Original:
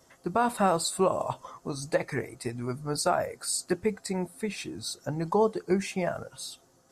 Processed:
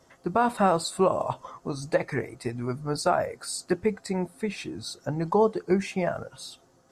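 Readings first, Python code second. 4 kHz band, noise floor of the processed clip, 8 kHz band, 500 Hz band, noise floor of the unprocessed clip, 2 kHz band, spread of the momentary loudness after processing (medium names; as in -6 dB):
-0.5 dB, -61 dBFS, -4.0 dB, +2.5 dB, -62 dBFS, +1.5 dB, 12 LU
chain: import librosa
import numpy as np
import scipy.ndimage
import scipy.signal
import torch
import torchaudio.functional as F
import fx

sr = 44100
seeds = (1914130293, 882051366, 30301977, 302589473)

y = fx.lowpass(x, sr, hz=4000.0, slope=6)
y = y * librosa.db_to_amplitude(2.5)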